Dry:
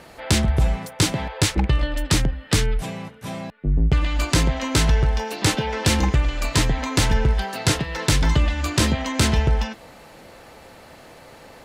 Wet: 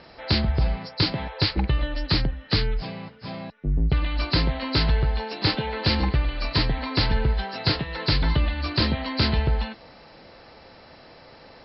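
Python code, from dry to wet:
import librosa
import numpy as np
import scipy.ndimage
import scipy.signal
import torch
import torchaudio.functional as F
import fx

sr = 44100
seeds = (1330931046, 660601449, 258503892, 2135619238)

y = fx.freq_compress(x, sr, knee_hz=3900.0, ratio=4.0)
y = y * librosa.db_to_amplitude(-3.5)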